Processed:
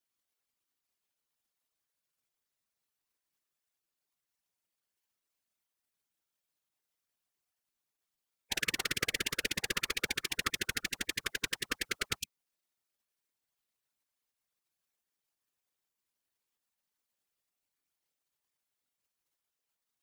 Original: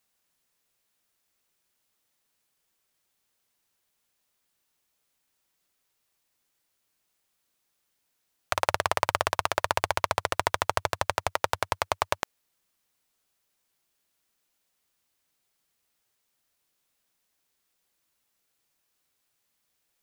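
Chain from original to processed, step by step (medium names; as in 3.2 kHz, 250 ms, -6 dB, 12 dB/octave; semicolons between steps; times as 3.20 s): spectral gate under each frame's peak -10 dB weak; whisper effect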